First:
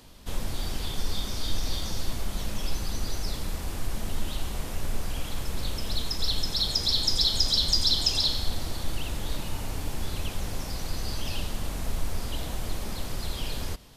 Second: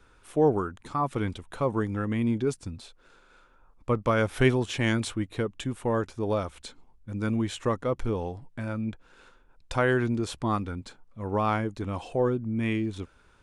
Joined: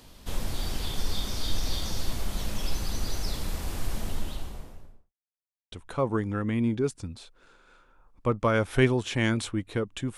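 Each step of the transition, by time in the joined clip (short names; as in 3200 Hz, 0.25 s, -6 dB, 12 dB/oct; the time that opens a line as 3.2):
first
3.89–5.13 studio fade out
5.13–5.72 mute
5.72 switch to second from 1.35 s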